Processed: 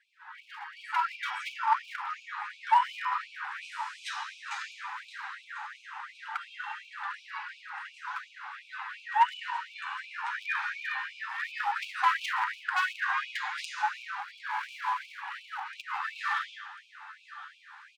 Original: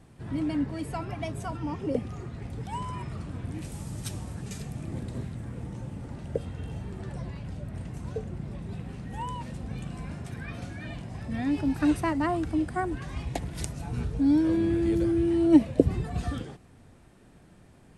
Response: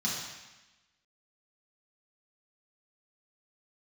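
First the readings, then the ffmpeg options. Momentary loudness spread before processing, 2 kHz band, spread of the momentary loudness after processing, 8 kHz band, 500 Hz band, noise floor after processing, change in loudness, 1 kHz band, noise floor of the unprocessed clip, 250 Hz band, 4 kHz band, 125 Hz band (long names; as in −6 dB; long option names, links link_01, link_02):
14 LU, +11.5 dB, 16 LU, −5.5 dB, below −35 dB, −56 dBFS, −3.0 dB, +9.0 dB, −55 dBFS, below −40 dB, +7.0 dB, below −40 dB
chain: -filter_complex "[0:a]acrusher=bits=10:mix=0:aa=0.000001,highpass=140,lowpass=3500,aeval=exprs='0.668*sin(PI/2*1.78*val(0)/0.668)':channel_layout=same,asplit=2[link_01][link_02];[1:a]atrim=start_sample=2205[link_03];[link_02][link_03]afir=irnorm=-1:irlink=0,volume=-10dB[link_04];[link_01][link_04]amix=inputs=2:normalize=0,acompressor=threshold=-17dB:ratio=12,aecho=1:1:1044|2088|3132|4176:0.141|0.0664|0.0312|0.0147,flanger=delay=4.8:depth=8.4:regen=25:speed=0.14:shape=triangular,equalizer=frequency=1600:width=2.7:gain=6,asoftclip=type=hard:threshold=-23.5dB,highshelf=frequency=2300:gain=-10,dynaudnorm=framelen=100:gausssize=17:maxgain=11dB,afftfilt=real='re*gte(b*sr/1024,740*pow(2300/740,0.5+0.5*sin(2*PI*2.8*pts/sr)))':imag='im*gte(b*sr/1024,740*pow(2300/740,0.5+0.5*sin(2*PI*2.8*pts/sr)))':win_size=1024:overlap=0.75"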